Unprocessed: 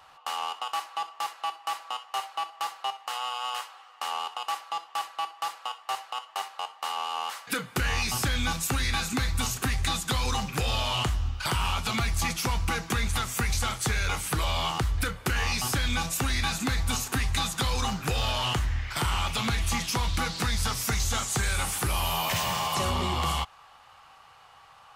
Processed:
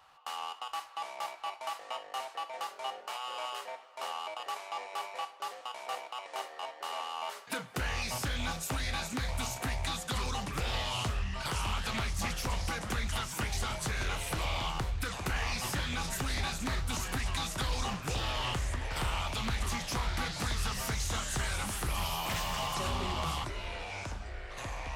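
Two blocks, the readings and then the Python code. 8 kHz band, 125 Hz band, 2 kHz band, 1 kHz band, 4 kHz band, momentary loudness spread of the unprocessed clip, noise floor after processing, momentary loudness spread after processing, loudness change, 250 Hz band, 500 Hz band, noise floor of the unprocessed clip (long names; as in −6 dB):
−7.0 dB, −6.0 dB, −5.5 dB, −6.0 dB, −6.5 dB, 7 LU, −51 dBFS, 7 LU, −6.5 dB, −6.0 dB, −3.5 dB, −54 dBFS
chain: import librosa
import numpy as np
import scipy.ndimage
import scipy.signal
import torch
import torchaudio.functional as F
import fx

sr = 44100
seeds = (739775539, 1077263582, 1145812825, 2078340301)

y = fx.echo_pitch(x, sr, ms=686, semitones=-4, count=3, db_per_echo=-6.0)
y = fx.doppler_dist(y, sr, depth_ms=0.26)
y = y * 10.0 ** (-7.0 / 20.0)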